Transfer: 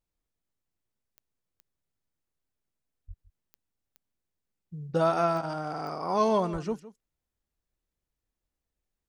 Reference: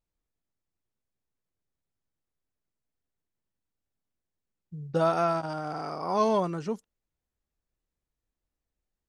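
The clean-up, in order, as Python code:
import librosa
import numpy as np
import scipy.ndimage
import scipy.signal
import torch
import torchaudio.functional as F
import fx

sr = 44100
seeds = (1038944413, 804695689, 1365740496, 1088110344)

y = fx.fix_declick_ar(x, sr, threshold=10.0)
y = fx.highpass(y, sr, hz=140.0, slope=24, at=(3.07, 3.19), fade=0.02)
y = fx.highpass(y, sr, hz=140.0, slope=24, at=(6.52, 6.64), fade=0.02)
y = fx.fix_echo_inverse(y, sr, delay_ms=161, level_db=-16.5)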